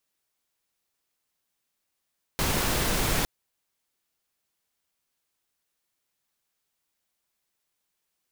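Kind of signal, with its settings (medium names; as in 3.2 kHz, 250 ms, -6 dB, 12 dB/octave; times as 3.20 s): noise pink, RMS -25.5 dBFS 0.86 s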